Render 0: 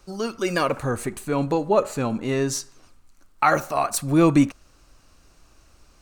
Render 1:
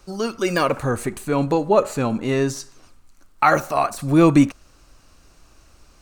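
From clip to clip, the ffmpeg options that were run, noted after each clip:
-af "deesser=0.6,volume=3dB"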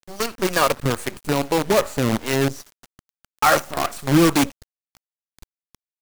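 -filter_complex "[0:a]asplit=2[a][b];[b]aeval=exprs='(mod(2.66*val(0)+1,2)-1)/2.66':c=same,volume=-9dB[c];[a][c]amix=inputs=2:normalize=0,acrossover=split=410[d][e];[d]aeval=exprs='val(0)*(1-0.7/2+0.7/2*cos(2*PI*2.4*n/s))':c=same[f];[e]aeval=exprs='val(0)*(1-0.7/2-0.7/2*cos(2*PI*2.4*n/s))':c=same[g];[f][g]amix=inputs=2:normalize=0,acrusher=bits=4:dc=4:mix=0:aa=0.000001"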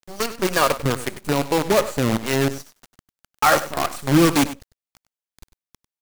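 -af "aecho=1:1:98:0.188"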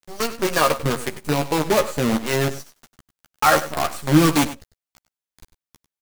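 -filter_complex "[0:a]asplit=2[a][b];[b]adelay=13,volume=-6dB[c];[a][c]amix=inputs=2:normalize=0,volume=-1dB"

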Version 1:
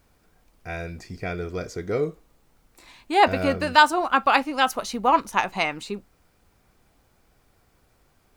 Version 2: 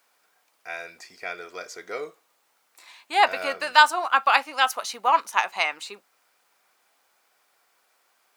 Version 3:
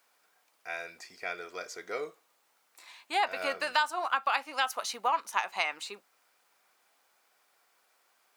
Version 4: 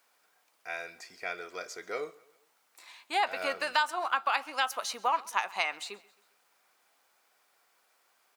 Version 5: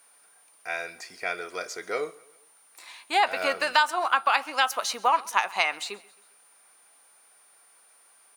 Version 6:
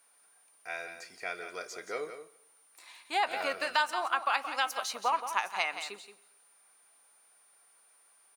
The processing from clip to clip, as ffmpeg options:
-af "highpass=810,volume=1.5dB"
-af "acompressor=threshold=-22dB:ratio=4,volume=-3dB"
-af "aecho=1:1:133|266|399:0.0708|0.0347|0.017"
-af "aeval=exprs='val(0)+0.000708*sin(2*PI*9200*n/s)':c=same,volume=6dB"
-af "aecho=1:1:175:0.316,volume=-7dB"

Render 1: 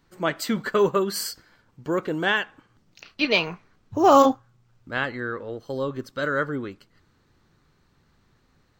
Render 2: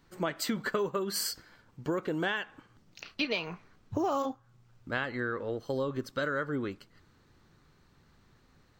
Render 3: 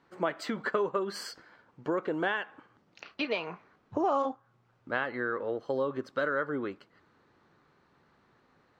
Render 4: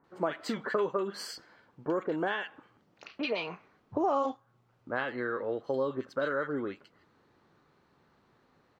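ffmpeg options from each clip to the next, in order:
-af "acompressor=threshold=-28dB:ratio=8"
-af "bandpass=f=800:t=q:w=0.54:csg=0,volume=3.5dB"
-filter_complex "[0:a]acrossover=split=1600[a][b];[b]adelay=40[c];[a][c]amix=inputs=2:normalize=0"

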